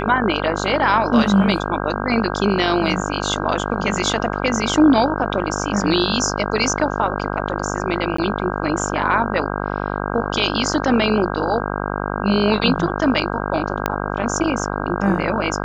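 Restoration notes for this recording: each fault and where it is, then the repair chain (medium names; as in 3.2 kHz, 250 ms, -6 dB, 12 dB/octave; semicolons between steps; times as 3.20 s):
buzz 50 Hz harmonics 32 -24 dBFS
8.17–8.18 s: dropout 14 ms
13.86 s: pop -4 dBFS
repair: de-click; de-hum 50 Hz, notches 32; interpolate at 8.17 s, 14 ms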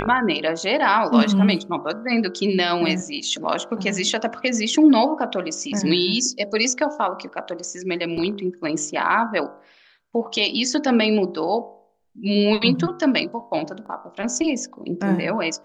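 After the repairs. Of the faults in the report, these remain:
13.86 s: pop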